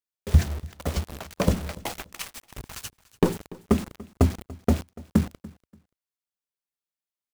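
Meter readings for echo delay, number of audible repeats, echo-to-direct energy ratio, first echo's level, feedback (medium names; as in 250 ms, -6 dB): 289 ms, 2, -21.0 dB, -21.0 dB, 23%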